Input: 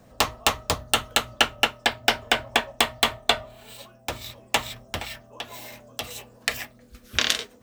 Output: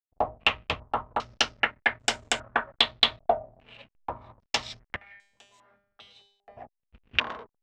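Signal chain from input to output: hysteresis with a dead band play -37 dBFS; 4.96–6.57 s: feedback comb 200 Hz, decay 0.69 s, harmonics all, mix 90%; step-sequenced low-pass 2.5 Hz 720–7400 Hz; trim -7 dB

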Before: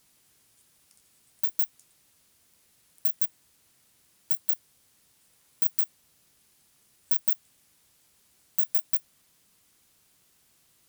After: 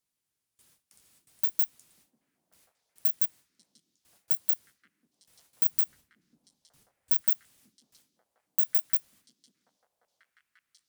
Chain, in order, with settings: gate with hold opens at -52 dBFS; 5.65–7.21 s: bass shelf 280 Hz +10.5 dB; repeats whose band climbs or falls 540 ms, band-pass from 250 Hz, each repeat 1.4 oct, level -1.5 dB

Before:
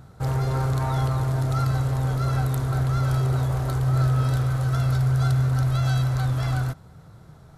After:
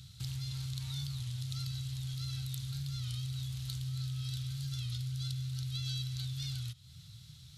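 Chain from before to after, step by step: FFT filter 130 Hz 0 dB, 350 Hz -27 dB, 630 Hz -28 dB, 1.6 kHz -16 dB, 4 kHz +6 dB; compression 3:1, threshold -37 dBFS, peak gain reduction 14 dB; high-pass 68 Hz; peaking EQ 3.1 kHz +13 dB 1.5 oct; warped record 33 1/3 rpm, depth 100 cents; trim -3.5 dB

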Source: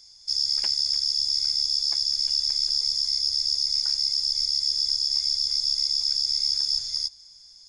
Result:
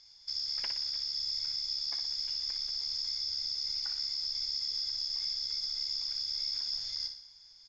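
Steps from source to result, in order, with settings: tilt shelf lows -5 dB, about 920 Hz; in parallel at -5 dB: hard clipper -18.5 dBFS, distortion -10 dB; on the sum: peak limiter -12 dBFS, peak gain reduction 5.5 dB; distance through air 230 m; feedback delay 60 ms, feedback 49%, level -7.5 dB; trim -5 dB

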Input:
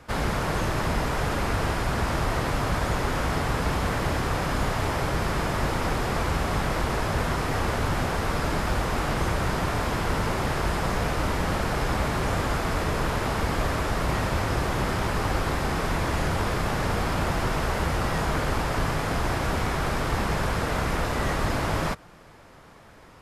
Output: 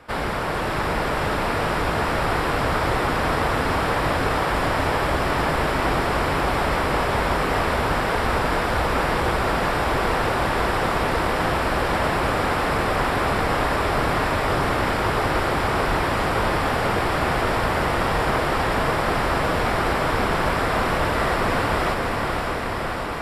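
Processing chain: tone controls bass -7 dB, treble -5 dB; band-stop 6.4 kHz, Q 5.2; echo that smears into a reverb 571 ms, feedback 78%, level -3.5 dB; trim +3.5 dB

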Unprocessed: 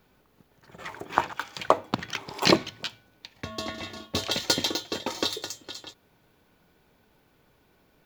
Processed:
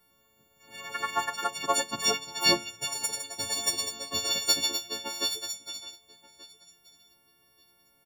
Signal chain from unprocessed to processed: partials quantised in pitch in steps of 4 st; feedback delay 1181 ms, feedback 18%, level -21 dB; ever faster or slower copies 106 ms, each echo +4 st, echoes 2; trim -9 dB

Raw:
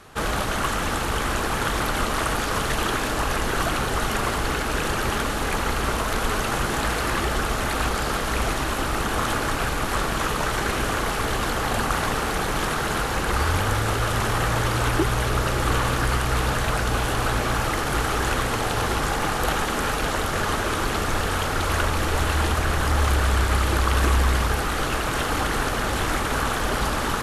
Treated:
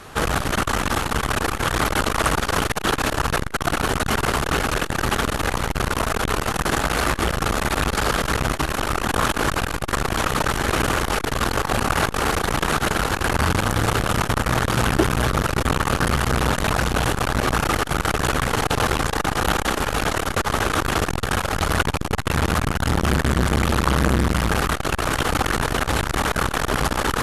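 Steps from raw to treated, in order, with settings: transformer saturation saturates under 570 Hz; trim +7 dB

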